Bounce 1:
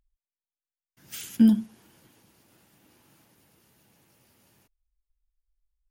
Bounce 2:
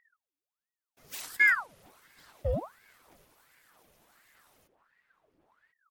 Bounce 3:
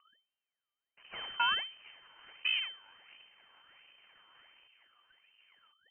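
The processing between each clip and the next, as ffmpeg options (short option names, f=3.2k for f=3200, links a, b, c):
-filter_complex "[0:a]aphaser=in_gain=1:out_gain=1:delay=3.4:decay=0.43:speed=1.6:type=sinusoidal,asplit=2[a][b];[b]adelay=1050,volume=-7dB,highshelf=f=4k:g=-23.6[c];[a][c]amix=inputs=2:normalize=0,aeval=exprs='val(0)*sin(2*PI*1100*n/s+1100*0.75/1.4*sin(2*PI*1.4*n/s))':c=same"
-af "aeval=exprs='max(val(0),0)':c=same,acompressor=threshold=-36dB:ratio=2.5,lowpass=f=2.6k:t=q:w=0.5098,lowpass=f=2.6k:t=q:w=0.6013,lowpass=f=2.6k:t=q:w=0.9,lowpass=f=2.6k:t=q:w=2.563,afreqshift=-3100,volume=6.5dB"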